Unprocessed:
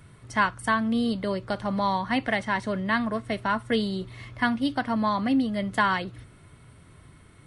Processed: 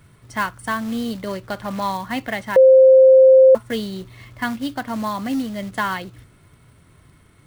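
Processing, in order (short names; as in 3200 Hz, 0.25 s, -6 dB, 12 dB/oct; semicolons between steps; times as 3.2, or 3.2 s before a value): short-mantissa float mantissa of 2-bit; 1.26–1.92 dynamic EQ 1700 Hz, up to +4 dB, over -39 dBFS, Q 0.72; 2.56–3.55 bleep 525 Hz -6 dBFS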